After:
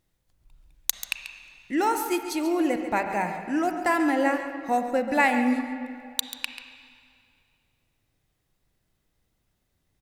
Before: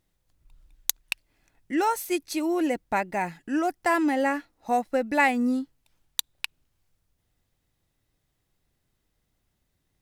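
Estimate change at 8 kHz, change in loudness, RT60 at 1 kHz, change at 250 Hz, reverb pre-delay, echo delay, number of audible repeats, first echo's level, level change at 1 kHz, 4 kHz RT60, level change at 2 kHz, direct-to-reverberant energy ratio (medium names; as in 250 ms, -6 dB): +0.5 dB, +1.0 dB, 2.3 s, +1.0 dB, 33 ms, 138 ms, 1, -12.0 dB, +1.0 dB, 2.1 s, +1.0 dB, 5.5 dB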